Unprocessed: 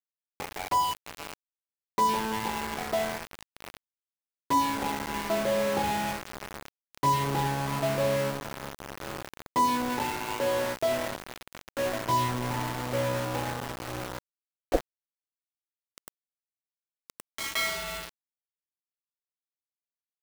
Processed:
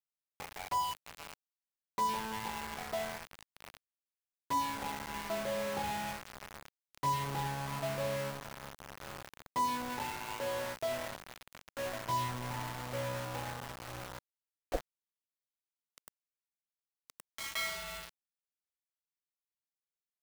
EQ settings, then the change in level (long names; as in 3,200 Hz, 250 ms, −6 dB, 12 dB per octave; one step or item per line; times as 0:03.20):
parametric band 330 Hz −6.5 dB 1.2 octaves
−7.0 dB